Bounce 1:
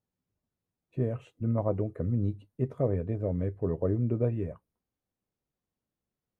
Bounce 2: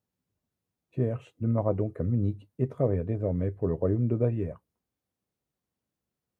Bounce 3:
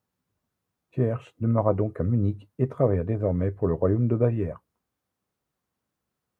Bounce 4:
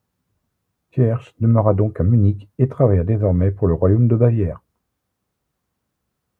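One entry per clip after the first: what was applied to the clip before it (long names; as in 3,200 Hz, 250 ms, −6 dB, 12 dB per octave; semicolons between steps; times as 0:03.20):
high-pass filter 49 Hz; level +2 dB
parametric band 1,200 Hz +6.5 dB 1.3 octaves; level +3 dB
low-shelf EQ 120 Hz +8 dB; level +5.5 dB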